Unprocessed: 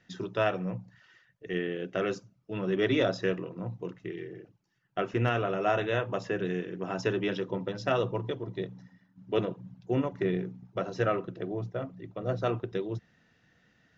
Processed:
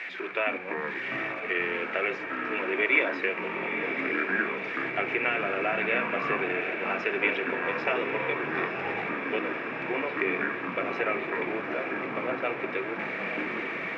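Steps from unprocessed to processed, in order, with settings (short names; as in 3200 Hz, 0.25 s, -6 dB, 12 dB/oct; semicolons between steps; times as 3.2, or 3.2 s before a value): zero-crossing step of -38 dBFS; HPF 340 Hz 24 dB/oct; compressor 3:1, threshold -29 dBFS, peak gain reduction 6.5 dB; synth low-pass 2300 Hz, resonance Q 14; diffused feedback echo 0.903 s, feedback 73%, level -8 dB; echoes that change speed 0.188 s, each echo -6 st, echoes 3, each echo -6 dB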